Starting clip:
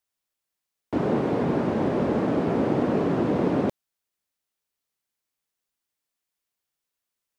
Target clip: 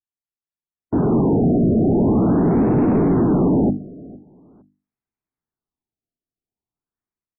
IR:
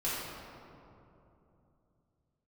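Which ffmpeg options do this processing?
-filter_complex "[0:a]dynaudnorm=framelen=640:gausssize=3:maxgain=15dB,afftdn=noise_reduction=16:noise_floor=-27,equalizer=frequency=540:width=4:gain=-13,bandreject=frequency=50:width_type=h:width=6,bandreject=frequency=100:width_type=h:width=6,bandreject=frequency=150:width_type=h:width=6,bandreject=frequency=200:width_type=h:width=6,bandreject=frequency=250:width_type=h:width=6,bandreject=frequency=300:width_type=h:width=6,bandreject=frequency=350:width_type=h:width=6,aresample=11025,asoftclip=type=tanh:threshold=-20dB,aresample=44100,tiltshelf=frequency=970:gain=8.5,asplit=2[link_01][link_02];[link_02]aecho=0:1:459|918:0.0841|0.0219[link_03];[link_01][link_03]amix=inputs=2:normalize=0,afftfilt=real='re*lt(b*sr/1024,720*pow(2800/720,0.5+0.5*sin(2*PI*0.44*pts/sr)))':imag='im*lt(b*sr/1024,720*pow(2800/720,0.5+0.5*sin(2*PI*0.44*pts/sr)))':win_size=1024:overlap=0.75"

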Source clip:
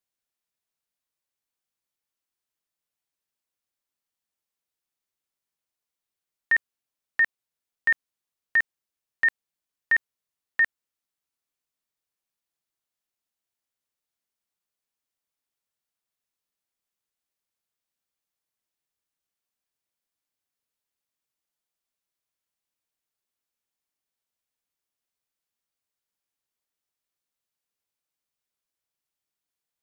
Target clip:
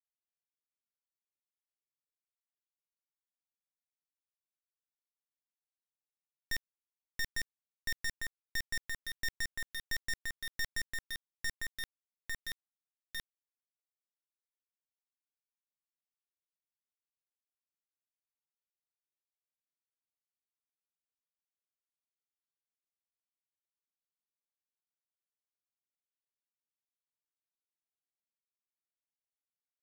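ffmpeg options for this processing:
ffmpeg -i in.wav -filter_complex "[0:a]asplit=2[link_01][link_02];[link_02]adynamicsmooth=sensitivity=2.5:basefreq=890,volume=-1dB[link_03];[link_01][link_03]amix=inputs=2:normalize=0,highpass=frequency=230:poles=1,equalizer=frequency=810:width_type=o:width=2.3:gain=-6.5,asplit=2[link_04][link_05];[link_05]adelay=851,lowpass=frequency=2400:poles=1,volume=-6dB,asplit=2[link_06][link_07];[link_07]adelay=851,lowpass=frequency=2400:poles=1,volume=0.54,asplit=2[link_08][link_09];[link_09]adelay=851,lowpass=frequency=2400:poles=1,volume=0.54,asplit=2[link_10][link_11];[link_11]adelay=851,lowpass=frequency=2400:poles=1,volume=0.54,asplit=2[link_12][link_13];[link_13]adelay=851,lowpass=frequency=2400:poles=1,volume=0.54,asplit=2[link_14][link_15];[link_15]adelay=851,lowpass=frequency=2400:poles=1,volume=0.54,asplit=2[link_16][link_17];[link_17]adelay=851,lowpass=frequency=2400:poles=1,volume=0.54[link_18];[link_04][link_06][link_08][link_10][link_12][link_14][link_16][link_18]amix=inputs=8:normalize=0,aeval=exprs='(tanh(22.4*val(0)+0.6)-tanh(0.6))/22.4':channel_layout=same,highshelf=frequency=3100:gain=4,acrusher=bits=4:dc=4:mix=0:aa=0.000001,areverse,acompressor=mode=upward:threshold=-44dB:ratio=2.5,areverse,volume=4dB" out.wav

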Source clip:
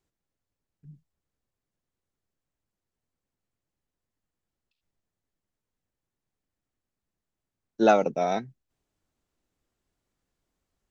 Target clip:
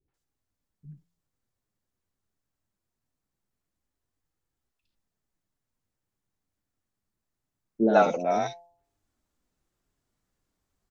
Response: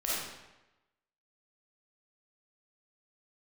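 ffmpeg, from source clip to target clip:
-filter_complex "[0:a]bandreject=frequency=171.9:width_type=h:width=4,bandreject=frequency=343.8:width_type=h:width=4,bandreject=frequency=515.7:width_type=h:width=4,bandreject=frequency=687.6:width_type=h:width=4,bandreject=frequency=859.5:width_type=h:width=4,bandreject=frequency=1031.4:width_type=h:width=4,flanger=delay=2.3:depth=8.2:regen=-55:speed=0.23:shape=sinusoidal,acrossover=split=2400[link_01][link_02];[link_02]alimiter=level_in=15dB:limit=-24dB:level=0:latency=1:release=36,volume=-15dB[link_03];[link_01][link_03]amix=inputs=2:normalize=0,acrossover=split=480|2800[link_04][link_05][link_06];[link_05]adelay=80[link_07];[link_06]adelay=140[link_08];[link_04][link_07][link_08]amix=inputs=3:normalize=0,volume=6dB"

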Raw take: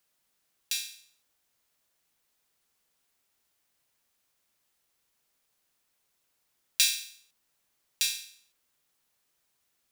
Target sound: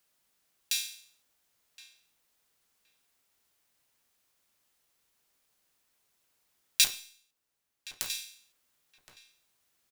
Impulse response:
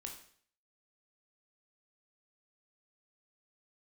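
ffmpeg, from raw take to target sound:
-filter_complex "[0:a]asettb=1/sr,asplit=3[link_01][link_02][link_03];[link_01]atrim=end=6.844[link_04];[link_02]atrim=start=6.84:end=8.1,asetpts=PTS-STARTPTS,afade=type=in:duration=0.004:curve=qsin,afade=type=out:start_time=1.256:duration=0.004:curve=qsin,aeval=exprs='0.473*(cos(1*acos(clip(val(0)/0.473,-1,1)))-cos(1*PI/2))+0.075*(cos(3*acos(clip(val(0)/0.473,-1,1)))-cos(3*PI/2))+0.0596*(cos(7*acos(clip(val(0)/0.473,-1,1)))-cos(7*PI/2))+0.00596*(cos(8*acos(clip(val(0)/0.473,-1,1)))-cos(8*PI/2))':channel_layout=same[link_05];[link_03]atrim=start=8.096[link_06];[link_04][link_05]acrossfade=duration=0.004:curve1=hsin:curve2=qsin[link_07];[link_07][link_06]acrossfade=duration=0.004:curve1=qsin:curve2=hsin,asplit=2[link_08][link_09];[link_09]adelay=1069,lowpass=frequency=1800:poles=1,volume=-13.5dB,asplit=2[link_10][link_11];[link_11]adelay=1069,lowpass=frequency=1800:poles=1,volume=0.2[link_12];[link_08][link_10][link_12]amix=inputs=3:normalize=0,asplit=2[link_13][link_14];[1:a]atrim=start_sample=2205,asetrate=57330,aresample=44100[link_15];[link_14][link_15]afir=irnorm=-1:irlink=0,volume=-3.5dB[link_16];[link_13][link_16]amix=inputs=2:normalize=0,volume=-1dB"

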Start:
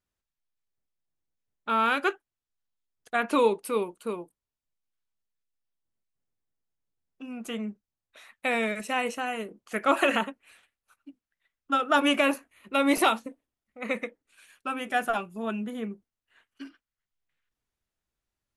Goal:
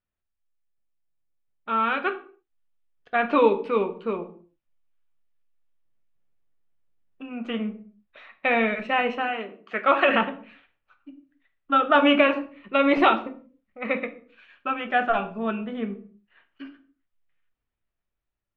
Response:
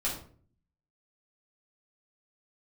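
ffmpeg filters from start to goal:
-filter_complex "[0:a]asplit=3[link_01][link_02][link_03];[link_01]afade=type=out:start_time=9.27:duration=0.02[link_04];[link_02]highpass=frequency=470:poles=1,afade=type=in:start_time=9.27:duration=0.02,afade=type=out:start_time=10.08:duration=0.02[link_05];[link_03]afade=type=in:start_time=10.08:duration=0.02[link_06];[link_04][link_05][link_06]amix=inputs=3:normalize=0,dynaudnorm=framelen=760:gausssize=7:maxgain=8dB,lowpass=frequency=3200:width=0.5412,lowpass=frequency=3200:width=1.3066,asplit=2[link_07][link_08];[1:a]atrim=start_sample=2205,afade=type=out:start_time=0.38:duration=0.01,atrim=end_sample=17199[link_09];[link_08][link_09]afir=irnorm=-1:irlink=0,volume=-10.5dB[link_10];[link_07][link_10]amix=inputs=2:normalize=0,volume=-4.5dB"

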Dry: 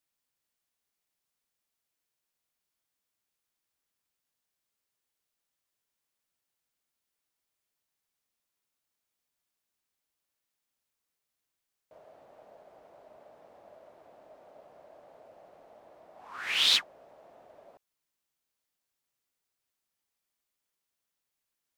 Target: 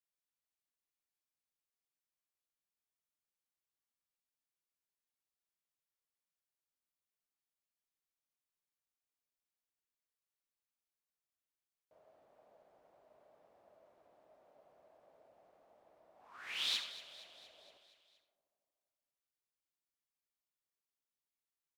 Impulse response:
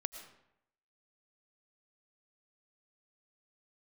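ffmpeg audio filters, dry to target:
-filter_complex "[0:a]aecho=1:1:234|468|702|936|1170|1404:0.168|0.101|0.0604|0.0363|0.0218|0.0131[link_01];[1:a]atrim=start_sample=2205,asetrate=79380,aresample=44100[link_02];[link_01][link_02]afir=irnorm=-1:irlink=0,volume=-6.5dB"

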